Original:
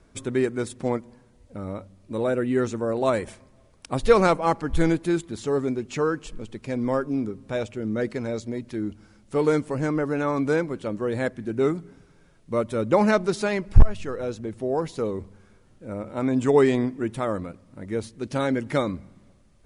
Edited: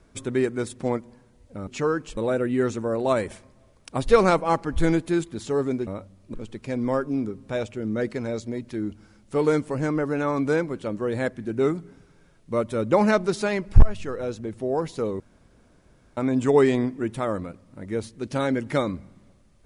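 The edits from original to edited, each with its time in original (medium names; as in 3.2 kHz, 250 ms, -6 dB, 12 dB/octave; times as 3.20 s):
1.67–2.14 s: swap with 5.84–6.34 s
15.20–16.17 s: room tone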